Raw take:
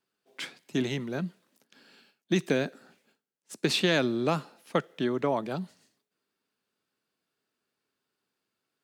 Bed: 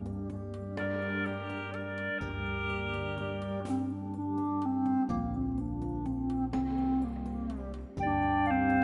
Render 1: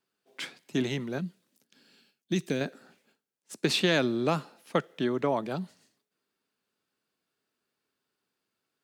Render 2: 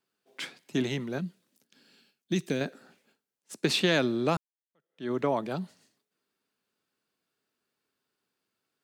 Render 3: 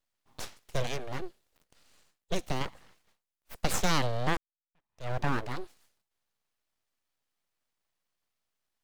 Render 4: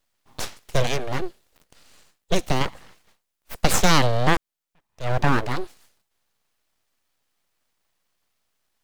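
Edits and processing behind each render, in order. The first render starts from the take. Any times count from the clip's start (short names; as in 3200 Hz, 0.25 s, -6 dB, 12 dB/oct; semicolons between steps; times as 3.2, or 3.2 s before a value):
1.18–2.61 bell 1000 Hz -8.5 dB 2.8 oct
4.37–5.11 fade in exponential
full-wave rectifier
gain +10 dB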